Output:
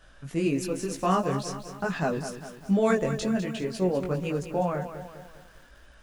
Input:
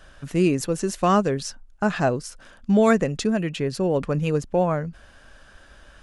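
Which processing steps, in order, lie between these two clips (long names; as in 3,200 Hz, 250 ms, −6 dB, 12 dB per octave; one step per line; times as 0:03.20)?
multi-voice chorus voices 2, 1.1 Hz, delay 19 ms, depth 3 ms
feedback echo at a low word length 201 ms, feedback 55%, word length 8 bits, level −10 dB
level −2.5 dB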